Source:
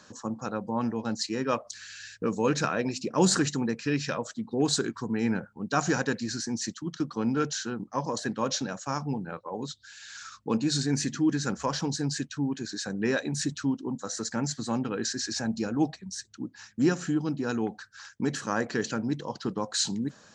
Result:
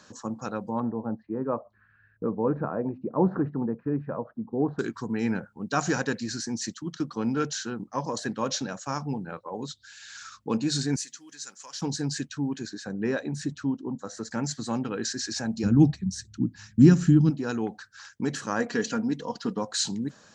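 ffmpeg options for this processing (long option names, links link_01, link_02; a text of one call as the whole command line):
ffmpeg -i in.wav -filter_complex "[0:a]asettb=1/sr,asplit=3[link_01][link_02][link_03];[link_01]atrim=end=0.804[link_04];[link_02]atrim=start=0.8:end=4.79,asetpts=PTS-STARTPTS,afade=type=in:duration=0.004:curve=qsin,afade=type=out:start_time=3.986:duration=0.004:curve=qsin,lowpass=frequency=1100:width=0.5412,lowpass=frequency=1100:width=1.3066[link_05];[link_03]atrim=start=4.786[link_06];[link_04][link_05]acrossfade=duration=0.004:curve1=hsin:curve2=qsin[link_07];[link_07][link_06]acrossfade=duration=0.004:curve1=qsin:curve2=hsin,asettb=1/sr,asplit=3[link_08][link_09][link_10];[link_08]atrim=end=10.964[link_11];[link_09]atrim=start=10.96:end=11.82,asetpts=PTS-STARTPTS,afade=type=in:duration=0.004:curve=qsin,afade=type=out:start_time=0.856:duration=0.004:curve=qsin,aderivative[link_12];[link_10]atrim=start=11.816[link_13];[link_11][link_12]acrossfade=duration=0.004:curve1=hsin:curve2=qsin[link_14];[link_14][link_13]acrossfade=duration=0.004:curve1=qsin:curve2=hsin,asettb=1/sr,asplit=3[link_15][link_16][link_17];[link_15]atrim=end=12.694[link_18];[link_16]atrim=start=12.69:end=14.31,asetpts=PTS-STARTPTS,afade=type=in:duration=0.004:curve=qsin,afade=type=out:start_time=1.616:duration=0.004:curve=qsin,highshelf=frequency=2200:gain=-10[link_19];[link_17]atrim=start=14.306[link_20];[link_18][link_19]acrossfade=duration=0.004:curve1=hsin:curve2=qsin[link_21];[link_21][link_20]acrossfade=duration=0.004:curve1=qsin:curve2=hsin,asplit=3[link_22][link_23][link_24];[link_22]afade=type=out:start_time=15.63:duration=0.02[link_25];[link_23]asubboost=boost=9.5:cutoff=190,afade=type=in:start_time=15.63:duration=0.02,afade=type=out:start_time=17.29:duration=0.02[link_26];[link_24]afade=type=in:start_time=17.29:duration=0.02[link_27];[link_25][link_26][link_27]amix=inputs=3:normalize=0,asettb=1/sr,asplit=3[link_28][link_29][link_30];[link_28]atrim=end=18.594[link_31];[link_29]atrim=start=18.59:end=19.63,asetpts=PTS-STARTPTS,afade=type=in:duration=0.004:curve=qsin,afade=type=out:start_time=1.036:duration=0.004:curve=qsin,aecho=1:1:4.2:0.57,atrim=end_sample=45864[link_32];[link_30]atrim=start=19.626[link_33];[link_31][link_32]acrossfade=duration=0.004:curve1=hsin:curve2=qsin[link_34];[link_34][link_33]acrossfade=duration=0.004:curve1=qsin:curve2=hsin" out.wav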